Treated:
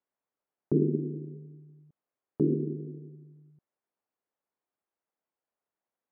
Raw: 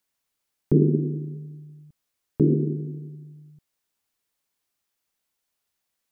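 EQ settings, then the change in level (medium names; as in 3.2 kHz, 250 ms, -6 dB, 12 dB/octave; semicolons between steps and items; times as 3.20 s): dynamic bell 750 Hz, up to -7 dB, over -37 dBFS, Q 0.92; band-pass filter 590 Hz, Q 0.68; distance through air 470 m; 0.0 dB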